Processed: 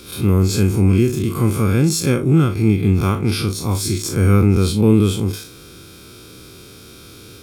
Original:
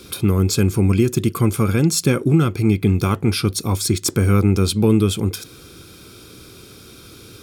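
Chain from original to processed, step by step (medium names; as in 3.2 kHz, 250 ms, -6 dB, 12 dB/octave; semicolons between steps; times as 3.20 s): spectral blur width 85 ms; trim +3 dB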